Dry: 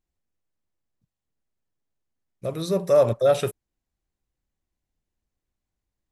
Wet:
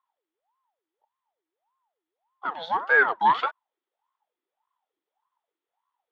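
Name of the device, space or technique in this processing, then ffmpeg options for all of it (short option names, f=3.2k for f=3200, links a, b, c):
voice changer toy: -filter_complex "[0:a]asplit=3[a][b][c];[a]afade=t=out:st=2.55:d=0.02[d];[b]agate=range=-33dB:threshold=-28dB:ratio=3:detection=peak,afade=t=in:st=2.55:d=0.02,afade=t=out:st=3.05:d=0.02[e];[c]afade=t=in:st=3.05:d=0.02[f];[d][e][f]amix=inputs=3:normalize=0,aeval=exprs='val(0)*sin(2*PI*690*n/s+690*0.55/1.7*sin(2*PI*1.7*n/s))':c=same,highpass=510,equalizer=f=590:t=q:w=4:g=-5,equalizer=f=890:t=q:w=4:g=6,equalizer=f=1.3k:t=q:w=4:g=4,equalizer=f=1.9k:t=q:w=4:g=5,equalizer=f=3.4k:t=q:w=4:g=8,lowpass=f=3.6k:w=0.5412,lowpass=f=3.6k:w=1.3066"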